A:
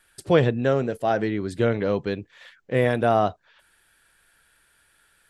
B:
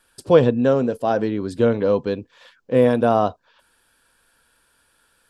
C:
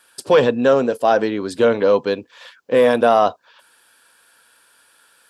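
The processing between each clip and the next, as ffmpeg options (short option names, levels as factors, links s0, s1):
-af "equalizer=f=250:t=o:w=0.33:g=9,equalizer=f=500:t=o:w=0.33:g=7,equalizer=f=1000:t=o:w=0.33:g=7,equalizer=f=2000:t=o:w=0.33:g=-8,equalizer=f=5000:t=o:w=0.33:g=4"
-af "aeval=exprs='0.891*(cos(1*acos(clip(val(0)/0.891,-1,1)))-cos(1*PI/2))+0.0708*(cos(3*acos(clip(val(0)/0.891,-1,1)))-cos(3*PI/2))':c=same,apsyclip=4.22,highpass=f=610:p=1,volume=0.794"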